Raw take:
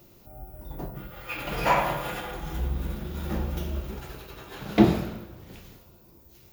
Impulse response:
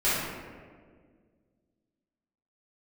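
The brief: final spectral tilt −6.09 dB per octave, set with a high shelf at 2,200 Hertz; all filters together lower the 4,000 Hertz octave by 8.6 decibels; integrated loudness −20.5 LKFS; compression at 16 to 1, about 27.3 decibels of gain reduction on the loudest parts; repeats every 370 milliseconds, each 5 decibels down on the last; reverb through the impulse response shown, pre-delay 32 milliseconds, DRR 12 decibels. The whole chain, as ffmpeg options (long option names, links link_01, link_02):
-filter_complex "[0:a]highshelf=frequency=2200:gain=-6.5,equalizer=frequency=4000:width_type=o:gain=-5.5,acompressor=threshold=-39dB:ratio=16,aecho=1:1:370|740|1110|1480|1850|2220|2590:0.562|0.315|0.176|0.0988|0.0553|0.031|0.0173,asplit=2[link_01][link_02];[1:a]atrim=start_sample=2205,adelay=32[link_03];[link_02][link_03]afir=irnorm=-1:irlink=0,volume=-26dB[link_04];[link_01][link_04]amix=inputs=2:normalize=0,volume=23dB"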